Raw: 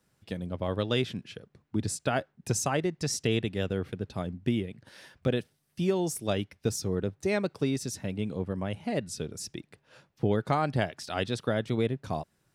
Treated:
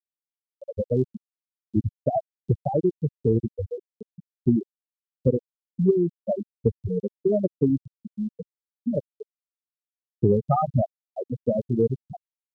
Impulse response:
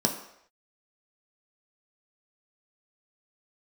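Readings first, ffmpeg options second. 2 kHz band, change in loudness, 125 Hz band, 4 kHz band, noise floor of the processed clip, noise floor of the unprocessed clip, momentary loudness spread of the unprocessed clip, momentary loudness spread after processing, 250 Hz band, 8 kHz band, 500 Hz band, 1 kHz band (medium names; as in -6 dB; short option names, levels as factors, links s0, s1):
under -35 dB, +5.0 dB, +5.0 dB, under -30 dB, under -85 dBFS, -74 dBFS, 9 LU, 14 LU, +5.0 dB, under -35 dB, +5.5 dB, +2.5 dB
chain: -af "afftfilt=real='re*gte(hypot(re,im),0.251)':imag='im*gte(hypot(re,im),0.251)':win_size=1024:overlap=0.75,aexciter=amount=14.6:drive=8.8:freq=3000,acontrast=64,volume=1.26"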